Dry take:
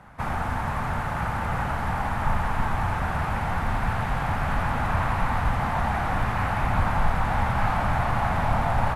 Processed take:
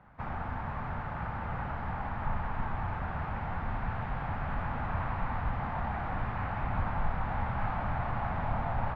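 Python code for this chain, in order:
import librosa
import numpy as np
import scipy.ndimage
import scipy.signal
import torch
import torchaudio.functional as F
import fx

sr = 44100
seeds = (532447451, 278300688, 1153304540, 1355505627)

y = fx.air_absorb(x, sr, metres=300.0)
y = F.gain(torch.from_numpy(y), -8.0).numpy()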